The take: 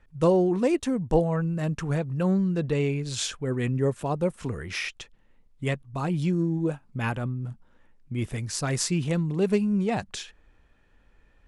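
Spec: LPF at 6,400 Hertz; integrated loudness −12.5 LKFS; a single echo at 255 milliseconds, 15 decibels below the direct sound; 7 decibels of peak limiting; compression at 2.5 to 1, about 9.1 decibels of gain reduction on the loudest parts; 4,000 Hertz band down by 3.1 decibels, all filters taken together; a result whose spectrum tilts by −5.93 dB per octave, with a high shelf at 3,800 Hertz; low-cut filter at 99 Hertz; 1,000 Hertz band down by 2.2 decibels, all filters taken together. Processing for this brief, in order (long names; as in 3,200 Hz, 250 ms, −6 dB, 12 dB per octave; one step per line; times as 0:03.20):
high-pass filter 99 Hz
low-pass filter 6,400 Hz
parametric band 1,000 Hz −3 dB
high-shelf EQ 3,800 Hz +3.5 dB
parametric band 4,000 Hz −5.5 dB
downward compressor 2.5 to 1, threshold −31 dBFS
brickwall limiter −25.5 dBFS
single-tap delay 255 ms −15 dB
level +22 dB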